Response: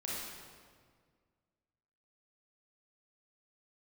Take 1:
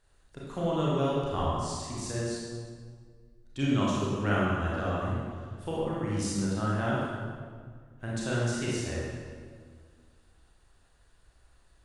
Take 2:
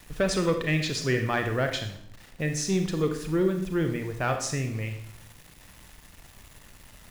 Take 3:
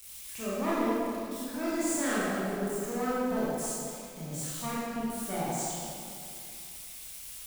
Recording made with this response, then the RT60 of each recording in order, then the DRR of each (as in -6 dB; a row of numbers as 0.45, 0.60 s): 1; 1.8, 0.65, 2.6 s; -6.5, 5.5, -9.0 dB